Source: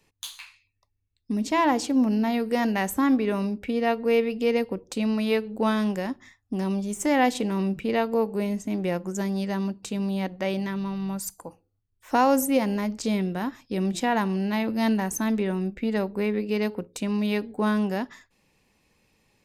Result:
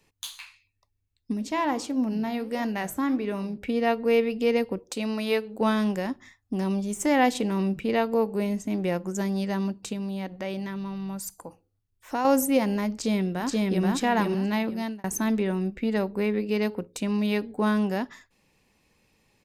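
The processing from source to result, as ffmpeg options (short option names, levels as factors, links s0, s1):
-filter_complex "[0:a]asplit=3[s0][s1][s2];[s0]afade=t=out:st=1.32:d=0.02[s3];[s1]flanger=delay=5.3:depth=5.7:regen=-84:speed=1.5:shape=sinusoidal,afade=t=in:st=1.32:d=0.02,afade=t=out:st=3.57:d=0.02[s4];[s2]afade=t=in:st=3.57:d=0.02[s5];[s3][s4][s5]amix=inputs=3:normalize=0,asettb=1/sr,asplit=3[s6][s7][s8];[s6]atrim=end=4.794[s9];[s7]atrim=start=4.79:end=5.61,asetpts=PTS-STARTPTS,afade=t=in:d=0.004:c=qsin,afade=t=out:st=0.816:d=0.004:c=qsin,bass=f=250:g=-8,treble=f=4000:g=2[s10];[s8]atrim=start=5.606[s11];[s9][s10]acrossfade=d=0.004:c1=hsin:c2=qsin[s12];[s12][s11]acrossfade=d=0.004:c1=qsin:c2=hsin,asettb=1/sr,asplit=3[s13][s14][s15];[s13]atrim=end=9.934[s16];[s14]atrim=start=9.93:end=12.25,asetpts=PTS-STARTPTS,afade=t=in:d=0.004:c=qsin,afade=t=out:st=2.316:d=0.004:c=qsin,acompressor=threshold=0.0158:ratio=1.5:attack=3.2:release=140:knee=1:detection=peak[s17];[s15]atrim=start=12.246[s18];[s16][s17]acrossfade=d=0.004:c1=hsin:c2=qsin[s19];[s19][s18]acrossfade=d=0.004:c1=qsin:c2=hsin,asplit=2[s20][s21];[s21]afade=t=in:st=12.92:d=0.01,afade=t=out:st=13.86:d=0.01,aecho=0:1:480|960|1440|1920:0.944061|0.236015|0.0590038|0.014751[s22];[s20][s22]amix=inputs=2:normalize=0,asplit=2[s23][s24];[s23]atrim=end=15.04,asetpts=PTS-STARTPTS,afade=t=out:st=14.58:d=0.46[s25];[s24]atrim=start=15.04,asetpts=PTS-STARTPTS,afade=t=in:d=0.004:c=hsin[s26];[s25][s26]concat=n=2:v=0:a=1"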